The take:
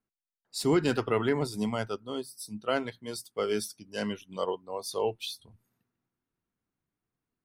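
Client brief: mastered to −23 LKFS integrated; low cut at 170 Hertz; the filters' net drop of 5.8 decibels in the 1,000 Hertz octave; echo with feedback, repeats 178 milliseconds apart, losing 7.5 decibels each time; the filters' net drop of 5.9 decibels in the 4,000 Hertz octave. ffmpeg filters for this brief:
ffmpeg -i in.wav -af "highpass=170,equalizer=frequency=1000:width_type=o:gain=-7.5,equalizer=frequency=4000:width_type=o:gain=-7.5,aecho=1:1:178|356|534|712|890:0.422|0.177|0.0744|0.0312|0.0131,volume=10dB" out.wav

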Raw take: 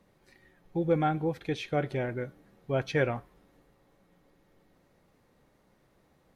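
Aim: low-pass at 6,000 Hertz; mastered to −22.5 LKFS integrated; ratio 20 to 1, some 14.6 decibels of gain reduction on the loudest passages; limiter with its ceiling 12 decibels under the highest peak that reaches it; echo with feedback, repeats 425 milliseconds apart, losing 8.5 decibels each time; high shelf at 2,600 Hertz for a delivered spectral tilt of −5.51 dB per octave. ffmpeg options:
ffmpeg -i in.wav -af "lowpass=6000,highshelf=frequency=2600:gain=-5,acompressor=threshold=-35dB:ratio=20,alimiter=level_in=13dB:limit=-24dB:level=0:latency=1,volume=-13dB,aecho=1:1:425|850|1275|1700:0.376|0.143|0.0543|0.0206,volume=24dB" out.wav

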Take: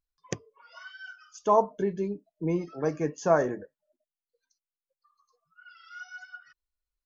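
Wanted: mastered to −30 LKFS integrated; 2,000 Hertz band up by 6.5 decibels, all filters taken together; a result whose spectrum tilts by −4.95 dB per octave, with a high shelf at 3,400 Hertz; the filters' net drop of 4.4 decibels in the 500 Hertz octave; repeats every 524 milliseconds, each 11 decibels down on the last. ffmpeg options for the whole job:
ffmpeg -i in.wav -af "equalizer=frequency=500:width_type=o:gain=-7,equalizer=frequency=2000:width_type=o:gain=9,highshelf=frequency=3400:gain=4.5,aecho=1:1:524|1048|1572:0.282|0.0789|0.0221,volume=2dB" out.wav

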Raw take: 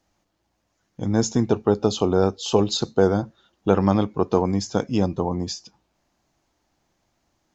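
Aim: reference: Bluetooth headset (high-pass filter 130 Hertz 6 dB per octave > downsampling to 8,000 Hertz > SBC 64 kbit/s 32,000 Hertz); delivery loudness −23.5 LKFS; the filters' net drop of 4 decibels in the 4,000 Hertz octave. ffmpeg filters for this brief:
ffmpeg -i in.wav -af "highpass=frequency=130:poles=1,equalizer=frequency=4000:width_type=o:gain=-5,aresample=8000,aresample=44100" -ar 32000 -c:a sbc -b:a 64k out.sbc

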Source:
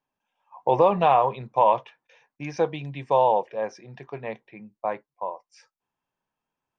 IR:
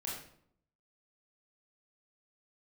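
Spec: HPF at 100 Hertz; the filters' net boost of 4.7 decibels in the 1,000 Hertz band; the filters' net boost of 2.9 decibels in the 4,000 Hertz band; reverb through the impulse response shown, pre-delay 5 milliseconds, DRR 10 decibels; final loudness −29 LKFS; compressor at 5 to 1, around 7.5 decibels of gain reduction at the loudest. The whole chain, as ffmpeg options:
-filter_complex "[0:a]highpass=100,equalizer=frequency=1000:width_type=o:gain=5.5,equalizer=frequency=4000:width_type=o:gain=3.5,acompressor=threshold=-18dB:ratio=5,asplit=2[link_01][link_02];[1:a]atrim=start_sample=2205,adelay=5[link_03];[link_02][link_03]afir=irnorm=-1:irlink=0,volume=-10.5dB[link_04];[link_01][link_04]amix=inputs=2:normalize=0,volume=-2.5dB"

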